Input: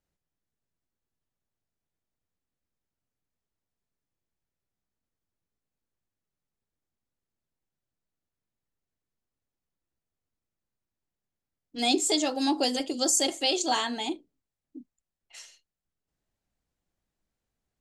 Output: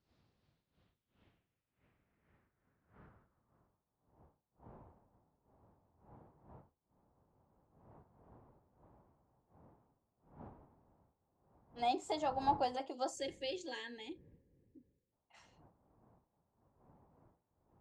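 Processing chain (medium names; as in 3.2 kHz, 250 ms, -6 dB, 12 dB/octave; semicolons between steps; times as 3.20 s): wind noise 90 Hz -35 dBFS; band-pass sweep 4.5 kHz -> 900 Hz, 0.38–4.13 s; time-frequency box 13.15–15.12 s, 580–1600 Hz -23 dB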